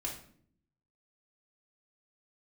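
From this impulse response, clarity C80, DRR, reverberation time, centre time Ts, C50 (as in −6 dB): 11.0 dB, −3.5 dB, 0.60 s, 27 ms, 6.5 dB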